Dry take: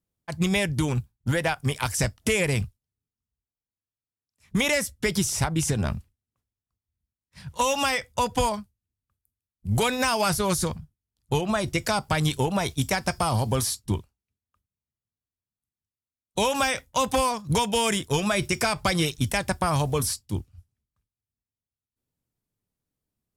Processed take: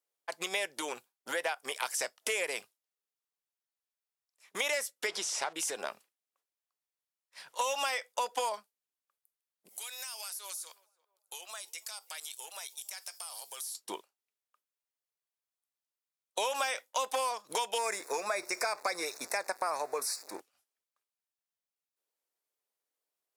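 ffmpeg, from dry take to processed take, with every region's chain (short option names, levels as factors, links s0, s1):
-filter_complex "[0:a]asettb=1/sr,asplit=3[s0][s1][s2];[s0]atrim=end=5.074[s3];[s1]atrim=start=5.07:end=5.53,asetpts=PTS-STARTPTS,afade=t=in:d=0.004:c=qsin,afade=t=out:st=0.456:d=0.004:c=qsin,aeval=exprs='val(0)+0.5*0.0168*sgn(val(0))':c=same,lowpass=6400,bandreject=f=60:t=h:w=6,bandreject=f=120:t=h:w=6,bandreject=f=180:t=h:w=6,bandreject=f=240:t=h:w=6[s4];[s2]atrim=start=5.526[s5];[s3][s4]acrossfade=d=0.004:c1=hsin:c2=qsin[s6];[s6][s5]acrossfade=d=0.004:c1=qsin:c2=hsin,asettb=1/sr,asplit=3[s7][s8][s9];[s7]atrim=end=9.684[s10];[s8]atrim=start=9.68:end=13.75,asetpts=PTS-STARTPTS,afade=t=in:d=0.004:c=qsin,afade=t=out:st=4.066:d=0.004:c=qsin,aderivative,acompressor=threshold=0.0112:ratio=4:attack=3.2:release=140:knee=1:detection=peak,asplit=2[s11][s12];[s12]adelay=329,lowpass=f=1000:p=1,volume=0.1,asplit=2[s13][s14];[s14]adelay=329,lowpass=f=1000:p=1,volume=0.47,asplit=2[s15][s16];[s16]adelay=329,lowpass=f=1000:p=1,volume=0.47,asplit=2[s17][s18];[s18]adelay=329,lowpass=f=1000:p=1,volume=0.47[s19];[s11][s13][s15][s17][s19]amix=inputs=5:normalize=0,atrim=end_sample=179487[s20];[s9]atrim=start=13.746[s21];[s10][s20]acrossfade=d=0.004:c1=hsin:c2=qsin[s22];[s22][s21]acrossfade=d=0.004:c1=qsin:c2=hsin,asettb=1/sr,asplit=3[s23][s24][s25];[s23]atrim=end=17.784[s26];[s24]atrim=start=17.78:end=20.4,asetpts=PTS-STARTPTS,afade=t=in:d=0.004:c=qsin,afade=t=out:st=2.616:d=0.004:c=qsin,aeval=exprs='val(0)+0.5*0.0158*sgn(val(0))':c=same,asuperstop=centerf=3100:order=4:qfactor=2,highshelf=f=8500:g=-6.5[s27];[s25]atrim=start=20.396[s28];[s26][s27]acrossfade=d=0.004:c1=hsin:c2=qsin[s29];[s29][s28]acrossfade=d=0.004:c1=qsin:c2=hsin,highpass=f=460:w=0.5412,highpass=f=460:w=1.3066,acompressor=threshold=0.0178:ratio=2"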